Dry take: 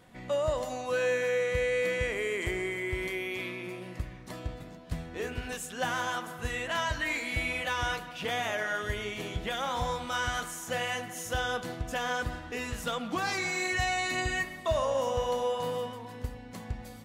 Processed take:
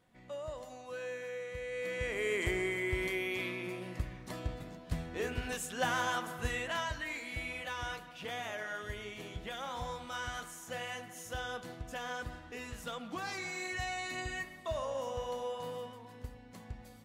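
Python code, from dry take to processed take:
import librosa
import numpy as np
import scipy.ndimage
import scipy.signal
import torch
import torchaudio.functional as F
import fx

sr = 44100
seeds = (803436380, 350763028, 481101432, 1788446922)

y = fx.gain(x, sr, db=fx.line((1.62, -13.0), (2.31, -1.0), (6.45, -1.0), (7.07, -8.5)))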